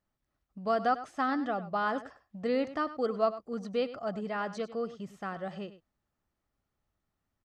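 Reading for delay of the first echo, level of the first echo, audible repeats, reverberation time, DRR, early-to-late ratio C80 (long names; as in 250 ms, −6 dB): 100 ms, −14.5 dB, 1, no reverb audible, no reverb audible, no reverb audible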